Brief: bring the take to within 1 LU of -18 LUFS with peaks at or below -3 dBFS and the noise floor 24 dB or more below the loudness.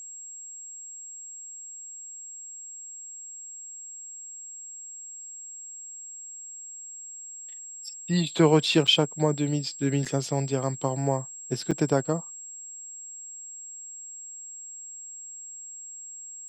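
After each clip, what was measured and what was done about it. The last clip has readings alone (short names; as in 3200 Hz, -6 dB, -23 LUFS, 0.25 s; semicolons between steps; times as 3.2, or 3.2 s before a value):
dropouts 3; longest dropout 5.6 ms; steady tone 7600 Hz; tone level -39 dBFS; loudness -30.5 LUFS; peak -8.0 dBFS; loudness target -18.0 LUFS
-> interpolate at 8.87/10.05/11.71, 5.6 ms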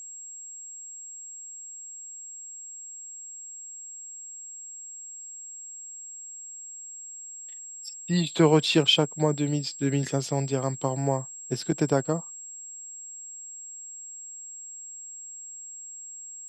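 dropouts 0; steady tone 7600 Hz; tone level -39 dBFS
-> notch 7600 Hz, Q 30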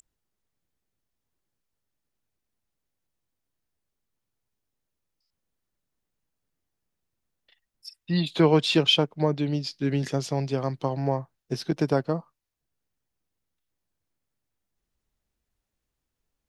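steady tone none; loudness -25.5 LUFS; peak -8.0 dBFS; loudness target -18.0 LUFS
-> gain +7.5 dB; limiter -3 dBFS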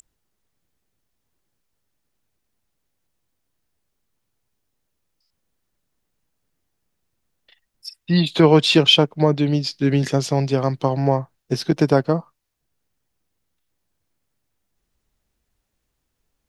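loudness -18.5 LUFS; peak -3.0 dBFS; noise floor -76 dBFS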